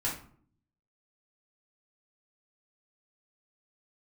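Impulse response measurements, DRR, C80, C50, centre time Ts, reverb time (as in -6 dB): -7.0 dB, 11.5 dB, 6.0 dB, 30 ms, 0.55 s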